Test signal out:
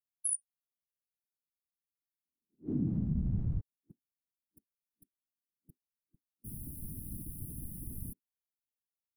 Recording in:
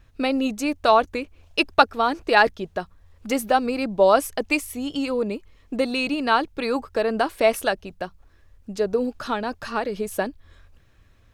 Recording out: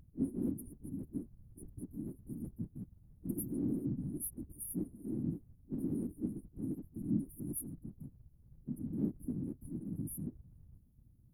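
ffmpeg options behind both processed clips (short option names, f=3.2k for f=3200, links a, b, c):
-af "afftfilt=real='re*(1-between(b*sr/4096,260,9400))':imag='im*(1-between(b*sr/4096,260,9400))':win_size=4096:overlap=0.75,afftfilt=real='hypot(re,im)*cos(2*PI*random(0))':imag='hypot(re,im)*sin(2*PI*random(1))':win_size=512:overlap=0.75"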